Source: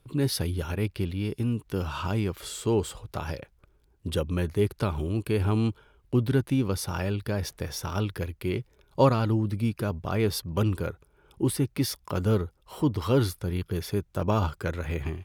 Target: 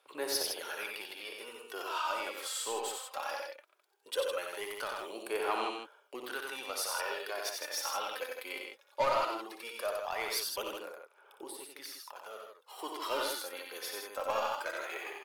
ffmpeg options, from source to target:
ffmpeg -i in.wav -filter_complex "[0:a]highpass=frequency=570:width=0.5412,highpass=frequency=570:width=1.3066,asettb=1/sr,asplit=3[link_01][link_02][link_03];[link_01]atrim=end=10.714[link_04];[link_02]atrim=start=10.71:end=12.79,asetpts=PTS-STARTPTS,afade=type=in:duration=0.004:curve=qsin,afade=type=out:start_time=2.076:duration=0.004:curve=qsin,acompressor=threshold=-48dB:ratio=3[link_05];[link_03]atrim=start=12.786[link_06];[link_04][link_05]acrossfade=duration=0.004:curve1=hsin:curve2=qsin[link_07];[link_07][link_06]acrossfade=duration=0.004:curve1=qsin:curve2=hsin,asoftclip=type=tanh:threshold=-24dB,aphaser=in_gain=1:out_gain=1:delay=3.9:decay=0.53:speed=0.18:type=sinusoidal,aecho=1:1:59|91|159:0.376|0.631|0.501,volume=-2.5dB" out.wav

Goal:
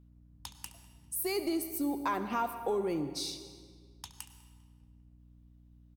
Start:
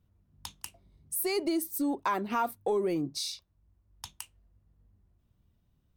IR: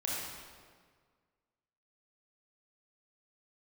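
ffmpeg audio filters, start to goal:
-filter_complex "[0:a]asplit=2[link_01][link_02];[link_02]adelay=199,lowpass=frequency=4500:poles=1,volume=-22.5dB,asplit=2[link_03][link_04];[link_04]adelay=199,lowpass=frequency=4500:poles=1,volume=0.53,asplit=2[link_05][link_06];[link_06]adelay=199,lowpass=frequency=4500:poles=1,volume=0.53,asplit=2[link_07][link_08];[link_08]adelay=199,lowpass=frequency=4500:poles=1,volume=0.53[link_09];[link_01][link_03][link_05][link_07][link_09]amix=inputs=5:normalize=0,asplit=2[link_10][link_11];[1:a]atrim=start_sample=2205,adelay=69[link_12];[link_11][link_12]afir=irnorm=-1:irlink=0,volume=-14.5dB[link_13];[link_10][link_13]amix=inputs=2:normalize=0,aeval=exprs='val(0)+0.002*(sin(2*PI*60*n/s)+sin(2*PI*2*60*n/s)/2+sin(2*PI*3*60*n/s)/3+sin(2*PI*4*60*n/s)/4+sin(2*PI*5*60*n/s)/5)':channel_layout=same,volume=-3dB"

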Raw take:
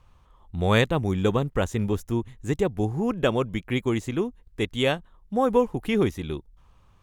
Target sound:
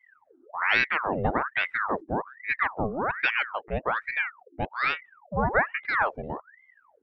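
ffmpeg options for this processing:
ffmpeg -i in.wav -af "lowpass=1600,afftdn=noise_reduction=19:noise_floor=-43,aeval=exprs='val(0)*sin(2*PI*1200*n/s+1200*0.75/1.2*sin(2*PI*1.2*n/s))':channel_layout=same" out.wav

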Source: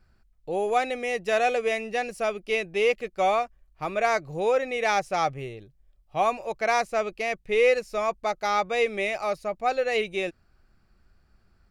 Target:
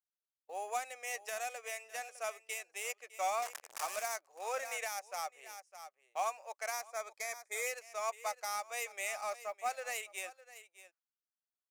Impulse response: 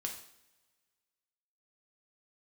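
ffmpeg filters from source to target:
-filter_complex "[0:a]asettb=1/sr,asplit=3[link_01][link_02][link_03];[link_01]atrim=end=3.424[link_04];[link_02]atrim=start=3.42:end=4.16,asetpts=PTS-STARTPTS,afade=type=in:duration=0.004:curve=qsin,afade=type=out:start_time=0.736:duration=0.004:curve=qsin,aeval=exprs='val(0)+0.5*0.0562*sgn(val(0))':channel_layout=same[link_05];[link_03]atrim=start=4.156[link_06];[link_04][link_05]acrossfade=duration=0.004:curve1=hsin:curve2=qsin[link_07];[link_07][link_06]acrossfade=duration=0.004:curve1=qsin:curve2=hsin,highpass=frequency=680:width=0.5412,highpass=frequency=680:width=1.3066,agate=range=-29dB:threshold=-46dB:ratio=16:detection=peak,adynamicsmooth=sensitivity=3.5:basefreq=3200,aexciter=amount=7.8:drive=6.6:freq=5600,asplit=2[link_08][link_09];[link_09]aecho=0:1:607:0.126[link_10];[link_08][link_10]amix=inputs=2:normalize=0,alimiter=limit=-18.5dB:level=0:latency=1:release=434,asettb=1/sr,asplit=3[link_11][link_12][link_13];[link_11]atrim=end=6.904[link_14];[link_12]atrim=start=6.9:end=7.67,asetpts=PTS-STARTPTS,afade=type=in:duration=0.004:curve=qsin,afade=type=out:start_time=0.766:duration=0.004:curve=qsin,asuperstop=centerf=2800:order=8:qfactor=4.7[link_15];[link_13]atrim=start=7.666[link_16];[link_14][link_15]acrossfade=duration=0.004:curve1=hsin:curve2=qsin[link_17];[link_17][link_16]acrossfade=duration=0.004:curve1=qsin:curve2=hsin,acrusher=bits=7:mode=log:mix=0:aa=0.000001,volume=-7dB"

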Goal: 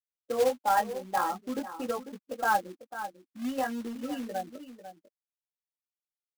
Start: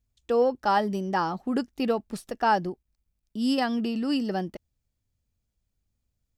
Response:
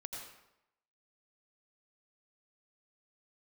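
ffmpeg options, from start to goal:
-filter_complex "[0:a]afftfilt=real='re*gte(hypot(re,im),0.0631)':imag='im*gte(hypot(re,im),0.0631)':win_size=1024:overlap=0.75,aemphasis=mode=reproduction:type=bsi,aecho=1:1:3.8:0.66,flanger=delay=16:depth=7:speed=0.49,aecho=1:1:496:0.211,asplit=2[link_01][link_02];[link_02]acompressor=threshold=-26dB:ratio=6,volume=-2dB[link_03];[link_01][link_03]amix=inputs=2:normalize=0,highpass=480,lowpass=2200,equalizer=frequency=1700:width=1.1:gain=4,acrusher=bits=3:mode=log:mix=0:aa=0.000001,volume=-5.5dB"

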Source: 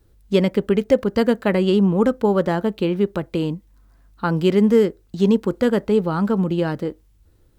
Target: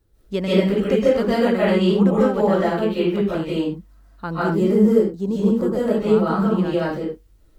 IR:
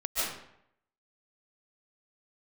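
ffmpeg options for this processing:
-filter_complex "[0:a]asettb=1/sr,asplit=3[link_01][link_02][link_03];[link_01]atrim=end=4.384[link_04];[link_02]atrim=start=4.38:end=5.88,asetpts=PTS-STARTPTS,afade=type=in:duration=0.004:curve=qsin,afade=type=out:start_time=1.496:duration=0.004:curve=qsin,equalizer=frequency=2700:width_type=o:width=2:gain=-12.5[link_05];[link_03]atrim=start=5.876[link_06];[link_04][link_05]acrossfade=duration=0.004:curve1=hsin:curve2=qsin[link_07];[link_07][link_06]acrossfade=duration=0.004:curve1=qsin:curve2=hsin[link_08];[1:a]atrim=start_sample=2205,afade=type=out:start_time=0.3:duration=0.01,atrim=end_sample=13671[link_09];[link_08][link_09]afir=irnorm=-1:irlink=0,volume=-6dB"

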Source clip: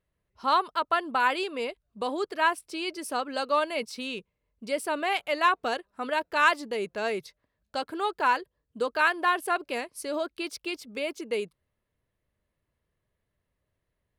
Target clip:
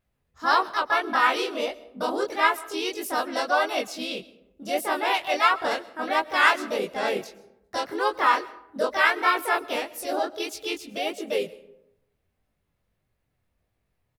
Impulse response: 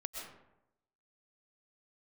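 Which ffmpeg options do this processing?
-filter_complex "[0:a]asplit=3[link_01][link_02][link_03];[link_02]asetrate=37084,aresample=44100,atempo=1.18921,volume=-13dB[link_04];[link_03]asetrate=55563,aresample=44100,atempo=0.793701,volume=-1dB[link_05];[link_01][link_04][link_05]amix=inputs=3:normalize=0,flanger=delay=18.5:depth=6.4:speed=1.6,asplit=2[link_06][link_07];[1:a]atrim=start_sample=2205,lowshelf=frequency=220:gain=10.5,highshelf=frequency=8000:gain=11[link_08];[link_07][link_08]afir=irnorm=-1:irlink=0,volume=-16dB[link_09];[link_06][link_09]amix=inputs=2:normalize=0,volume=2.5dB"

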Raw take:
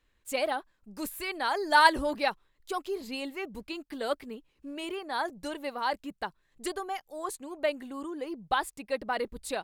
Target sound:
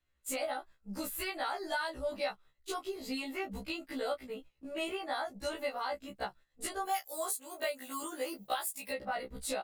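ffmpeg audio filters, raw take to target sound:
ffmpeg -i in.wav -filter_complex "[0:a]asettb=1/sr,asplit=3[link_01][link_02][link_03];[link_01]atrim=end=6.854[link_04];[link_02]atrim=start=6.85:end=8.91,asetpts=PTS-STARTPTS,afade=type=in:duration=0.004:curve=qsin,afade=type=out:start_time=2.056:duration=0.004:curve=qsin,aemphasis=mode=production:type=riaa[link_05];[link_03]atrim=start=8.906[link_06];[link_04][link_05]acrossfade=duration=0.004:curve1=hsin:curve2=qsin[link_07];[link_07][link_06]acrossfade=duration=0.004:curve1=qsin:curve2=hsin,agate=range=-13dB:threshold=-52dB:ratio=16:detection=peak,acompressor=threshold=-37dB:ratio=8,asplit=2[link_08][link_09];[link_09]adelay=14,volume=-5dB[link_10];[link_08][link_10]amix=inputs=2:normalize=0,afftfilt=real='re*1.73*eq(mod(b,3),0)':imag='im*1.73*eq(mod(b,3),0)':win_size=2048:overlap=0.75,volume=5.5dB" out.wav

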